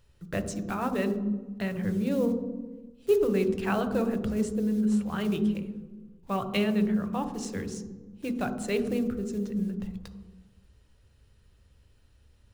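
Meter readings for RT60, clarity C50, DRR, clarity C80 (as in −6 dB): 1.3 s, 9.0 dB, 7.0 dB, 11.0 dB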